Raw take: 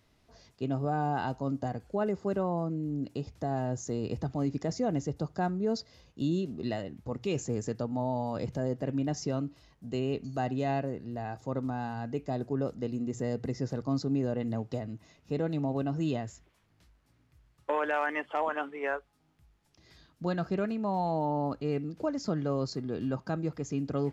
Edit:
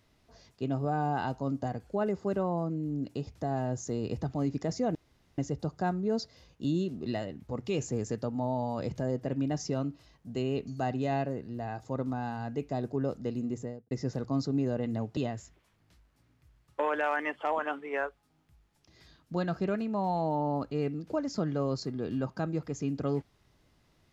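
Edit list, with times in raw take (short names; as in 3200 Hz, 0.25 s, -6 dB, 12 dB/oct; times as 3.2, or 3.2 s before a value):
4.95 insert room tone 0.43 s
13.03–13.48 studio fade out
14.74–16.07 cut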